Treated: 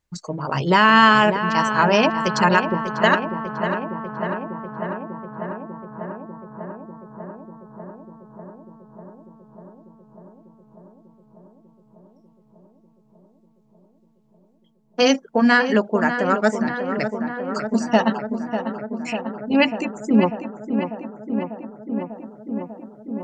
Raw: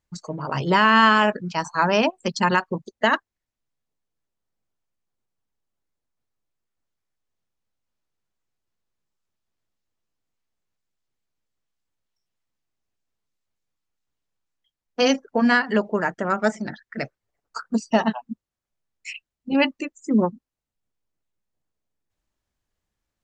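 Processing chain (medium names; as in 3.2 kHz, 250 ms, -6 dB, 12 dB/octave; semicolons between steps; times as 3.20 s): filtered feedback delay 595 ms, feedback 83%, low-pass 1.9 kHz, level -8 dB; trim +2.5 dB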